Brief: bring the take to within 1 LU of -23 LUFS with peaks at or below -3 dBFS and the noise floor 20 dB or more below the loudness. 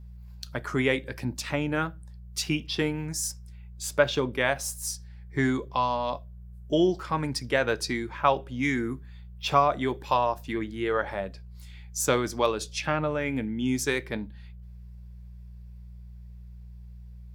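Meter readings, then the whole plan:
hum 60 Hz; harmonics up to 180 Hz; hum level -42 dBFS; loudness -28.0 LUFS; peak -6.0 dBFS; loudness target -23.0 LUFS
-> de-hum 60 Hz, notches 3; gain +5 dB; limiter -3 dBFS

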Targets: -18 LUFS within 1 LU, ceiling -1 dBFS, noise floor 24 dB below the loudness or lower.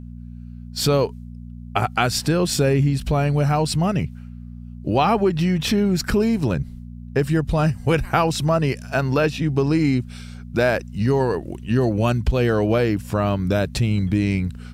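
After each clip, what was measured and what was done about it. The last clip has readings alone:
hum 60 Hz; harmonics up to 240 Hz; hum level -33 dBFS; loudness -21.0 LUFS; peak -4.5 dBFS; loudness target -18.0 LUFS
-> de-hum 60 Hz, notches 4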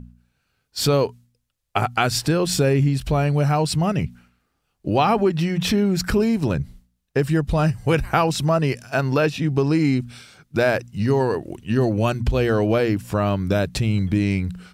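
hum none; loudness -21.0 LUFS; peak -5.0 dBFS; loudness target -18.0 LUFS
-> gain +3 dB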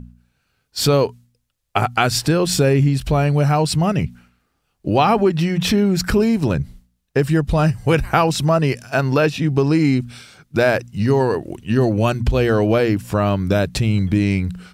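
loudness -18.0 LUFS; peak -2.0 dBFS; noise floor -70 dBFS

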